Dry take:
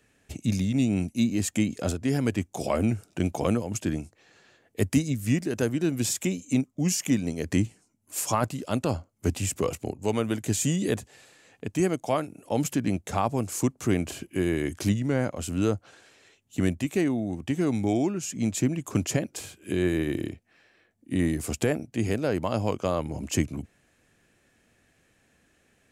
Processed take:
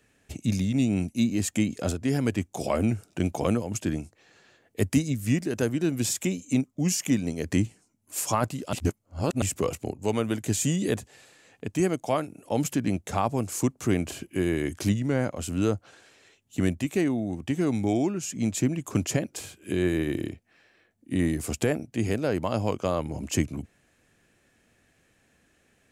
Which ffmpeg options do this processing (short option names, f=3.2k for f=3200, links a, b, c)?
-filter_complex "[0:a]asplit=3[a][b][c];[a]atrim=end=8.732[d];[b]atrim=start=8.728:end=9.422,asetpts=PTS-STARTPTS,areverse[e];[c]atrim=start=9.418[f];[d][e]acrossfade=d=0.004:c1=hsin:c2=hsin[g];[g][f]acrossfade=d=0.004:c1=hsin:c2=hsin"